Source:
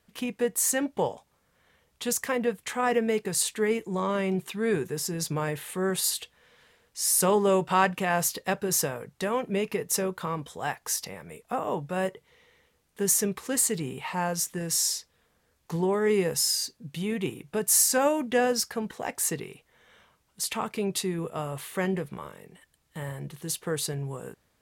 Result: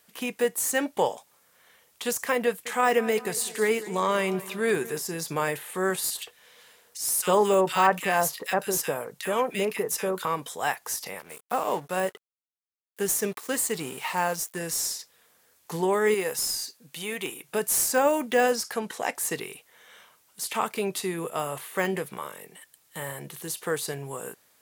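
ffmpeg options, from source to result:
-filter_complex "[0:a]asettb=1/sr,asplit=3[a][b][c];[a]atrim=end=2.454[d];[b]atrim=start=2.45:end=5.01,asetpts=PTS-STARTPTS,afade=t=in:d=0.004:c=qsin,afade=t=out:st=2.556:d=0.004:c=qsin,asplit=2[e][f];[f]adelay=203,lowpass=f=3.6k:p=1,volume=-17dB,asplit=2[g][h];[h]adelay=203,lowpass=f=3.6k:p=1,volume=0.55,asplit=2[i][j];[j]adelay=203,lowpass=f=3.6k:p=1,volume=0.55,asplit=2[k][l];[l]adelay=203,lowpass=f=3.6k:p=1,volume=0.55,asplit=2[m][n];[n]adelay=203,lowpass=f=3.6k:p=1,volume=0.55[o];[e][g][i][k][m][o]amix=inputs=6:normalize=0,atrim=end_sample=112896[p];[c]atrim=start=5.006[q];[d][p]acrossfade=d=0.004:c1=hsin:c2=qsin[r];[r][q]acrossfade=d=0.004:c1=qsin:c2=hsin,asettb=1/sr,asplit=3[s][t][u];[s]atrim=end=6.104[v];[t]atrim=start=6.1:end=10.25,asetpts=PTS-STARTPTS,afade=t=in:d=0.004:c=qsin,afade=t=out:st=4.146:d=0.004:c=qsin,acrossover=split=1600[w][x];[w]adelay=50[y];[y][x]amix=inputs=2:normalize=0,atrim=end_sample=183015[z];[u]atrim=start=10.246[aa];[v][z]acrossfade=d=0.004:c1=hsin:c2=qsin[ab];[ab][aa]acrossfade=d=0.004:c1=qsin:c2=hsin,asettb=1/sr,asplit=3[ac][ad][ae];[ac]atrim=end=11.194[af];[ad]atrim=start=11.19:end=14.59,asetpts=PTS-STARTPTS,afade=t=in:d=0.004:c=qsin,afade=t=out:st=3.396:d=0.004:c=qsin,aeval=exprs='sgn(val(0))*max(abs(val(0))-0.00376,0)':c=same[ag];[ae]atrim=start=14.586[ah];[af][ag]acrossfade=d=0.004:c1=hsin:c2=qsin[ai];[ai][ah]acrossfade=d=0.004:c1=qsin:c2=hsin,asettb=1/sr,asplit=3[aj][ak][al];[aj]atrim=end=16.144[am];[ak]atrim=start=16.14:end=17.49,asetpts=PTS-STARTPTS,afade=t=in:d=0.004:c=qsin,afade=t=out:st=1.346:d=0.004:c=qsin,lowshelf=f=330:g=-10.5[an];[al]atrim=start=17.486[ao];[am][an]acrossfade=d=0.004:c1=hsin:c2=qsin[ap];[ap][ao]acrossfade=d=0.004:c1=qsin:c2=hsin,asettb=1/sr,asplit=3[aq][ar][as];[aq]atrim=end=18.524[at];[ar]atrim=start=18.52:end=19.15,asetpts=PTS-STARTPTS,afade=t=in:d=0.004:c=qsin,afade=t=out:st=0.626:d=0.004:c=qsin,lowpass=12k[au];[as]atrim=start=19.146[av];[at][au]acrossfade=d=0.004:c1=hsin:c2=qsin[aw];[aw][av]acrossfade=d=0.004:c1=qsin:c2=hsin,highpass=f=550:p=1,highshelf=f=7.7k:g=11.5,deesser=0.85,volume=6dB"

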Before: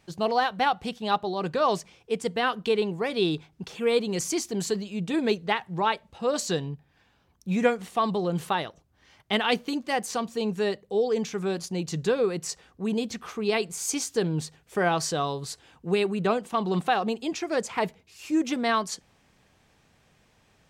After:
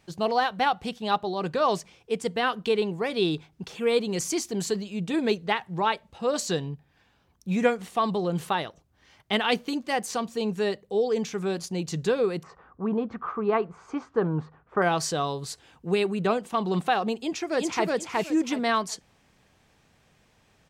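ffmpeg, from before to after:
-filter_complex "[0:a]asettb=1/sr,asplit=3[a][b][c];[a]atrim=end=12.434[d];[b]atrim=start=12.43:end=14.82,asetpts=PTS-STARTPTS,afade=t=in:d=0.004:c=qsin,afade=t=out:st=2.386:d=0.004:c=qsin,lowpass=f=1.2k:t=q:w=3.4[e];[c]atrim=start=14.816[f];[d][e]acrossfade=d=0.004:c1=hsin:c2=qsin[g];[g][f]acrossfade=d=0.004:c1=qsin:c2=hsin,asplit=2[h][i];[i]afade=t=in:st=17.22:d=0.01,afade=t=out:st=17.86:d=0.01,aecho=0:1:370|740|1110:0.944061|0.188812|0.0377624[j];[h][j]amix=inputs=2:normalize=0"

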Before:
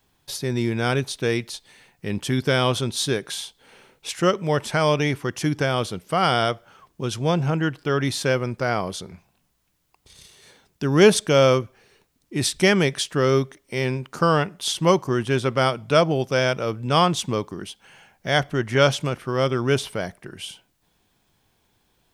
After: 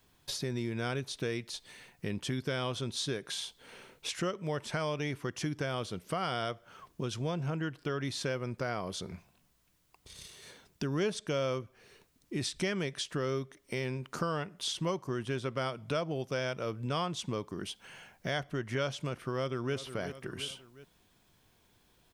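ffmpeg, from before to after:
-filter_complex "[0:a]asplit=2[a][b];[b]afade=t=in:st=19.15:d=0.01,afade=t=out:st=19.76:d=0.01,aecho=0:1:360|720|1080:0.177828|0.0622398|0.0217839[c];[a][c]amix=inputs=2:normalize=0,acrossover=split=8500[d][e];[e]acompressor=threshold=-49dB:ratio=4:attack=1:release=60[f];[d][f]amix=inputs=2:normalize=0,bandreject=f=820:w=12,acompressor=threshold=-34dB:ratio=3,volume=-1dB"

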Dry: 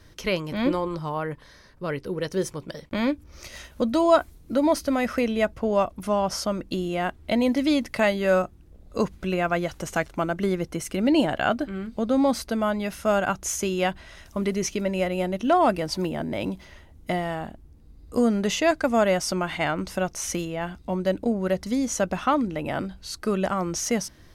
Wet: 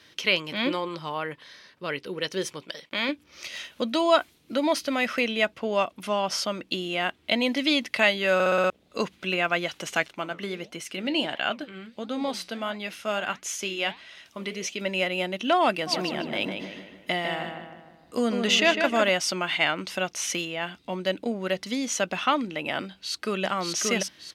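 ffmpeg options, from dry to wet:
-filter_complex "[0:a]asettb=1/sr,asplit=3[a][b][c];[a]atrim=end=2.624[d];[b]atrim=start=2.62:end=3.09,asetpts=PTS-STARTPTS,afade=t=in:d=0.004:c=qsin,afade=t=out:st=0.466:d=0.004:c=qsin,lowshelf=f=290:g=-9[e];[c]atrim=start=3.086[f];[d][e]acrossfade=d=0.004:c1=hsin:c2=qsin[g];[g][f]acrossfade=d=0.004:c1=qsin:c2=hsin,asettb=1/sr,asplit=3[h][i][j];[h]atrim=end=10.134[k];[i]atrim=start=10.13:end=14.81,asetpts=PTS-STARTPTS,afade=t=in:d=0.004:c=qsin,afade=t=out:st=4.676:d=0.004:c=qsin,flanger=delay=4.6:depth=9.5:regen=-77:speed=1.5:shape=sinusoidal[l];[j]atrim=start=14.806[m];[k][l]acrossfade=d=0.004:c1=hsin:c2=qsin[n];[n][m]acrossfade=d=0.004:c1=qsin:c2=hsin,asplit=3[o][p][q];[o]afade=t=out:st=15.86:d=0.02[r];[p]asplit=2[s][t];[t]adelay=153,lowpass=f=2.7k:p=1,volume=-5dB,asplit=2[u][v];[v]adelay=153,lowpass=f=2.7k:p=1,volume=0.5,asplit=2[w][x];[x]adelay=153,lowpass=f=2.7k:p=1,volume=0.5,asplit=2[y][z];[z]adelay=153,lowpass=f=2.7k:p=1,volume=0.5,asplit=2[aa][ab];[ab]adelay=153,lowpass=f=2.7k:p=1,volume=0.5,asplit=2[ac][ad];[ad]adelay=153,lowpass=f=2.7k:p=1,volume=0.5[ae];[s][u][w][y][aa][ac][ae]amix=inputs=7:normalize=0,afade=t=in:st=15.86:d=0.02,afade=t=out:st=19.08:d=0.02[af];[q]afade=t=in:st=19.08:d=0.02[ag];[r][af][ag]amix=inputs=3:normalize=0,asplit=2[ah][ai];[ai]afade=t=in:st=22.86:d=0.01,afade=t=out:st=23.44:d=0.01,aecho=0:1:580|1160|1740|2320|2900:0.794328|0.278015|0.0973052|0.0340568|0.0119199[aj];[ah][aj]amix=inputs=2:normalize=0,asplit=7[ak][al][am][an][ao][ap][aq];[ak]atrim=end=8.402[ar];[al]atrim=start=8.338:end=8.402[as];[am]atrim=start=8.338:end=8.402[at];[an]atrim=start=8.338:end=8.402[au];[ao]atrim=start=8.338:end=8.402[av];[ap]atrim=start=8.338:end=8.402[aw];[aq]atrim=start=8.698[ax];[ar][as]acrossfade=d=0.004:c1=hsin:c2=hsin[ay];[ay][at]acrossfade=d=0.004:c1=hsin:c2=hsin[az];[az][au]acrossfade=d=0.004:c1=hsin:c2=hsin[ba];[ba][av]acrossfade=d=0.004:c1=hsin:c2=hsin[bb];[bb][aw]acrossfade=d=0.004:c1=hsin:c2=hsin[bc];[bc][ax]acrossfade=d=0.004:c1=hsin:c2=hsin,highpass=190,equalizer=f=3k:w=0.83:g=13.5,volume=-4dB"

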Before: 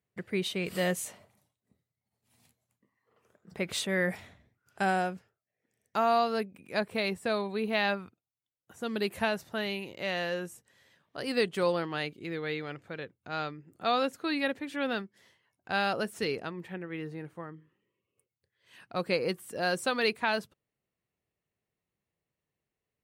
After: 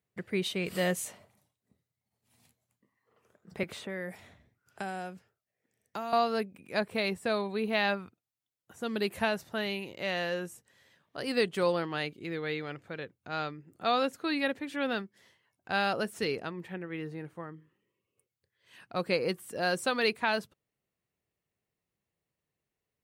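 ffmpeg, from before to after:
-filter_complex "[0:a]asettb=1/sr,asplit=3[a][b][c];[a]atrim=end=3.634[d];[b]atrim=start=3.63:end=6.13,asetpts=PTS-STARTPTS,afade=t=in:d=0.004:c=qsin,afade=t=out:st=2.496:d=0.004:c=qsin,acrossover=split=240|1000|2100|6500[e][f][g][h][i];[e]acompressor=threshold=-49dB:ratio=3[j];[f]acompressor=threshold=-41dB:ratio=3[k];[g]acompressor=threshold=-49dB:ratio=3[l];[h]acompressor=threshold=-53dB:ratio=3[m];[i]acompressor=threshold=-60dB:ratio=3[n];[j][k][l][m][n]amix=inputs=5:normalize=0[o];[c]atrim=start=6.126[p];[d][o]acrossfade=d=0.004:c1=hsin:c2=qsin[q];[q][p]acrossfade=d=0.004:c1=qsin:c2=hsin"

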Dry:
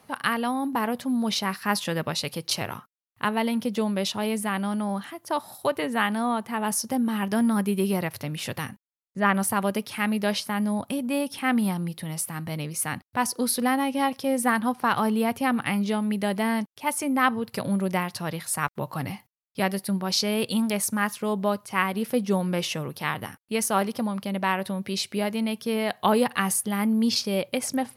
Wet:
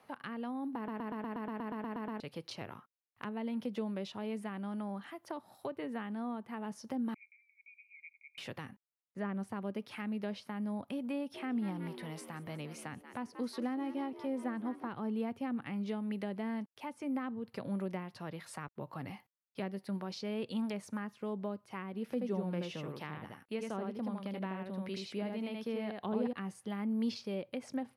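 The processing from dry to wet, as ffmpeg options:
-filter_complex "[0:a]asettb=1/sr,asplit=3[a][b][c];[a]atrim=end=7.144[d];[b]atrim=start=7.14:end=8.38,asetpts=PTS-STARTPTS,afade=t=in:d=0.004:c=qsin,afade=t=out:st=1.236:d=0.004:c=qsin,asuperpass=centerf=2300:order=8:qfactor=7.9[e];[c]atrim=start=8.376[f];[d][e]acrossfade=d=0.004:c1=hsin:c2=qsin[g];[g][f]acrossfade=d=0.004:c1=qsin:c2=hsin,asplit=3[h][i][j];[h]afade=t=out:st=11.34:d=0.02[k];[i]asplit=6[l][m][n][o][p][q];[m]adelay=181,afreqshift=71,volume=-14.5dB[r];[n]adelay=362,afreqshift=142,volume=-20.3dB[s];[o]adelay=543,afreqshift=213,volume=-26.2dB[t];[p]adelay=724,afreqshift=284,volume=-32dB[u];[q]adelay=905,afreqshift=355,volume=-37.9dB[v];[l][r][s][t][u][v]amix=inputs=6:normalize=0,afade=t=in:st=11.34:d=0.02,afade=t=out:st=14.87:d=0.02[w];[j]afade=t=in:st=14.87:d=0.02[x];[k][w][x]amix=inputs=3:normalize=0,asettb=1/sr,asplit=3[y][z][aa];[y]atrim=end=22.044[ab];[z]atrim=start=22.04:end=26.33,asetpts=PTS-STARTPTS,afade=t=in:d=0.004:c=qsin,afade=t=out:st=4.286:d=0.004:c=qsin,aecho=1:1:79:0.668,atrim=end_sample=189189[ac];[aa]atrim=start=26.326[ad];[ab][ac]acrossfade=d=0.004:c1=hsin:c2=qsin[ae];[ae][ad]acrossfade=d=0.004:c1=qsin:c2=hsin,asplit=13[af][ag][ah][ai][aj][ak][al][am][an][ao][ap][aq][ar];[af]atrim=end=0.882[as];[ag]atrim=start=0.758:end=0.882[at];[ah]atrim=start=0.758:end=0.882[au];[ai]atrim=start=0.758:end=0.882[av];[aj]atrim=start=0.758:end=0.882[aw];[ak]atrim=start=0.758:end=0.882[ax];[al]atrim=start=0.758:end=0.882[ay];[am]atrim=start=0.758:end=0.882[az];[an]atrim=start=0.758:end=0.882[ba];[ao]atrim=start=0.758:end=0.882[bb];[ap]atrim=start=0.758:end=0.882[bc];[aq]atrim=start=0.758:end=0.882[bd];[ar]atrim=start=2.198[be];[as][at]acrossfade=d=0.004:c1=hsin:c2=hsin[bf];[bf][au]acrossfade=d=0.004:c1=hsin:c2=hsin[bg];[bg][av]acrossfade=d=0.004:c1=hsin:c2=hsin[bh];[bh][aw]acrossfade=d=0.004:c1=hsin:c2=hsin[bi];[bi][ax]acrossfade=d=0.004:c1=hsin:c2=hsin[bj];[bj][ay]acrossfade=d=0.004:c1=hsin:c2=hsin[bk];[bk][az]acrossfade=d=0.004:c1=hsin:c2=hsin[bl];[bl][ba]acrossfade=d=0.004:c1=hsin:c2=hsin[bm];[bm][bb]acrossfade=d=0.004:c1=hsin:c2=hsin[bn];[bn][bc]acrossfade=d=0.004:c1=hsin:c2=hsin[bo];[bo][bd]acrossfade=d=0.004:c1=hsin:c2=hsin[bp];[bp][be]acrossfade=d=0.004:c1=hsin:c2=hsin,acrossover=split=8100[bq][br];[br]acompressor=threshold=-48dB:ratio=4:attack=1:release=60[bs];[bq][bs]amix=inputs=2:normalize=0,bass=f=250:g=-9,treble=f=4k:g=-10,acrossover=split=370[bt][bu];[bu]acompressor=threshold=-39dB:ratio=6[bv];[bt][bv]amix=inputs=2:normalize=0,volume=-5dB"

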